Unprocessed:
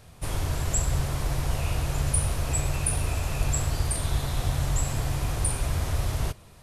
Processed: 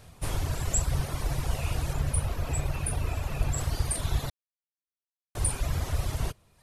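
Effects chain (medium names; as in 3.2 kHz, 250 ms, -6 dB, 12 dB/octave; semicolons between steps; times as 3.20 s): reverb removal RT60 0.93 s; 1.93–3.58 s: peaking EQ 7.5 kHz -7 dB 2 oct; 4.30–5.35 s: mute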